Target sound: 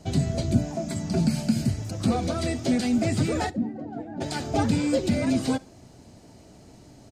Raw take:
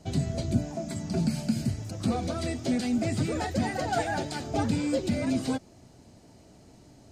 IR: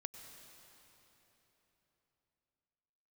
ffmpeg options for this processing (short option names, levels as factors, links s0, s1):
-filter_complex "[0:a]asplit=3[s0][s1][s2];[s0]afade=t=out:st=3.49:d=0.02[s3];[s1]bandpass=f=250:t=q:w=2.6:csg=0,afade=t=in:st=3.49:d=0.02,afade=t=out:st=4.2:d=0.02[s4];[s2]afade=t=in:st=4.2:d=0.02[s5];[s3][s4][s5]amix=inputs=3:normalize=0,aecho=1:1:67|134:0.0631|0.0177,volume=1.58"